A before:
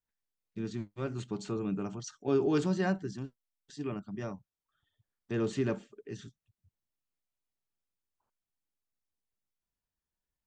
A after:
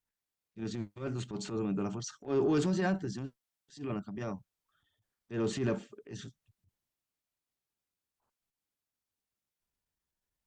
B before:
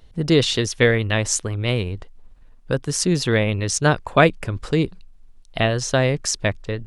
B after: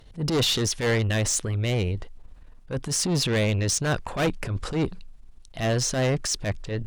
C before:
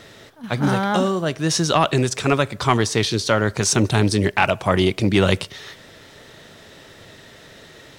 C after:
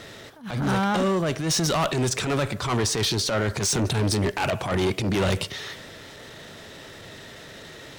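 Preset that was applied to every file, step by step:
soft clipping −17 dBFS
transient designer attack −12 dB, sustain +2 dB
harmonic generator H 5 −24 dB, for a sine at −15 dBFS

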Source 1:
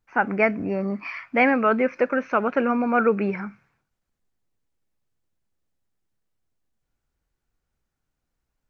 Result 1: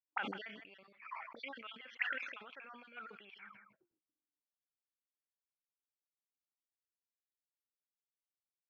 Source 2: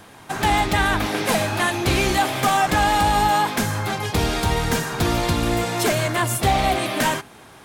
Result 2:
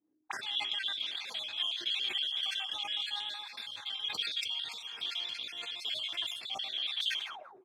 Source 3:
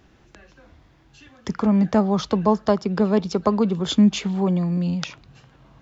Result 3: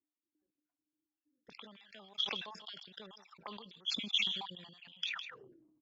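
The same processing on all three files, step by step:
time-frequency cells dropped at random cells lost 42%
noise gate −43 dBFS, range −28 dB
in parallel at 0 dB: output level in coarse steps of 15 dB
on the sum: envelope filter 300–3,300 Hz, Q 21, up, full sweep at −21.5 dBFS
on a send: single-tap delay 158 ms −22.5 dB
on the sum: level that may fall only so fast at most 53 dB per second
level +3.5 dB

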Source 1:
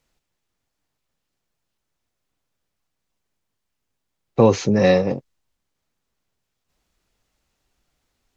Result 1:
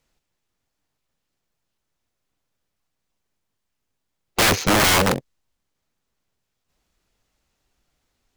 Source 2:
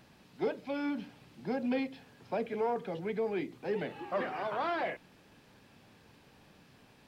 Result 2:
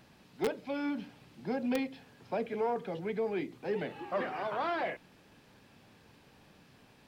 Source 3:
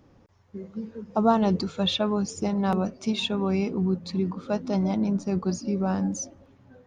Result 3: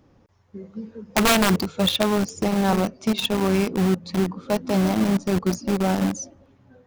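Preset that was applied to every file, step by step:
in parallel at −4.5 dB: bit reduction 4 bits
on the sum: wrap-around overflow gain 11.5 dB

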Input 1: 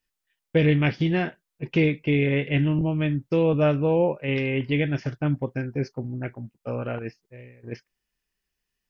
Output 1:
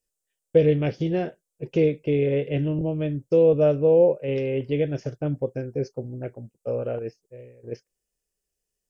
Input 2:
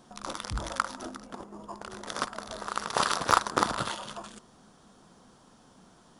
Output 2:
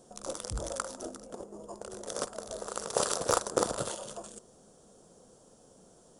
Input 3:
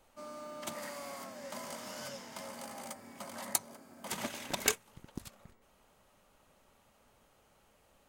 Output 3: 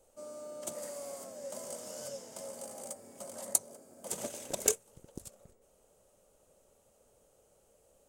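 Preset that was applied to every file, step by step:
octave-band graphic EQ 250/500/1,000/2,000/4,000/8,000 Hz −4/+11/−7/−8/−5/+10 dB
level −2.5 dB

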